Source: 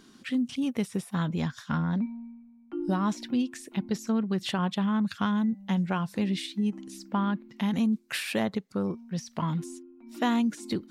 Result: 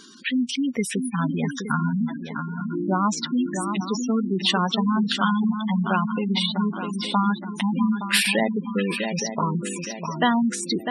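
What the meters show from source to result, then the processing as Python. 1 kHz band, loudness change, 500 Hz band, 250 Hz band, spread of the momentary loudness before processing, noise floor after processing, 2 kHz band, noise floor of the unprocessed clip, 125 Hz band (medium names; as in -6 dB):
+9.0 dB, +5.5 dB, +6.0 dB, +4.5 dB, 8 LU, -36 dBFS, +10.0 dB, -56 dBFS, +4.0 dB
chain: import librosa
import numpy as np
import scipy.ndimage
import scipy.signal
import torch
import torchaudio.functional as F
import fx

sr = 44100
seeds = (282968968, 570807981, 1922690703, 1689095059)

y = fx.tilt_eq(x, sr, slope=2.5)
y = fx.echo_swing(y, sr, ms=868, ratio=3, feedback_pct=40, wet_db=-6.5)
y = fx.spec_gate(y, sr, threshold_db=-15, keep='strong')
y = F.gain(torch.from_numpy(y), 9.0).numpy()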